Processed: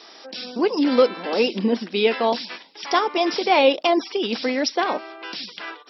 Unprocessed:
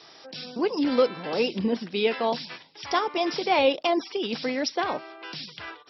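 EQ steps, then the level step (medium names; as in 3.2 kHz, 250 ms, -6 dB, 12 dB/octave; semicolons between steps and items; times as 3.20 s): brick-wall FIR high-pass 180 Hz; +5.0 dB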